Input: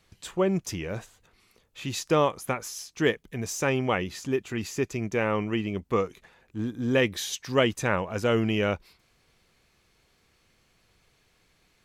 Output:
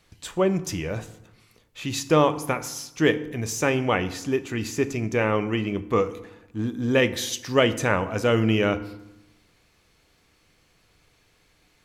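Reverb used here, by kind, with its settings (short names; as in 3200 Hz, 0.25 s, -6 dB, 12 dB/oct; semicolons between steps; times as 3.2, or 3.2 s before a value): FDN reverb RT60 0.88 s, low-frequency decay 1.35×, high-frequency decay 0.65×, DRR 10.5 dB; gain +3 dB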